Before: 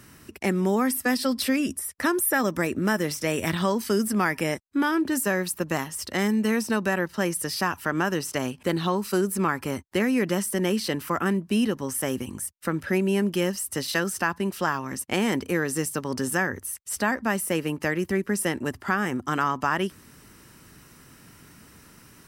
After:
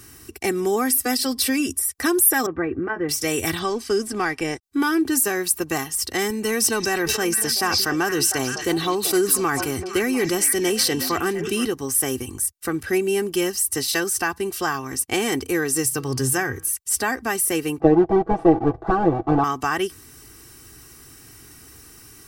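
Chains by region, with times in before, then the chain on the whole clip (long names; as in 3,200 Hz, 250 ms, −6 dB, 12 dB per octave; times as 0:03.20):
0:02.46–0:03.09: low-pass filter 1,900 Hz 24 dB per octave + notch comb filter 210 Hz
0:03.59–0:04.63: mu-law and A-law mismatch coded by A + high-frequency loss of the air 70 metres
0:06.30–0:11.66: high-pass filter 56 Hz + echo through a band-pass that steps 233 ms, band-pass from 4,700 Hz, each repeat −1.4 octaves, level −4.5 dB + level that may fall only so fast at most 39 dB per second
0:15.84–0:16.69: parametric band 130 Hz +13 dB 0.24 octaves + hum removal 160.2 Hz, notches 32
0:17.80–0:19.44: each half-wave held at its own peak + low-pass with resonance 710 Hz, resonance Q 2 + comb filter 6.1 ms, depth 75%
whole clip: bass and treble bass +3 dB, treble +8 dB; comb filter 2.6 ms, depth 70%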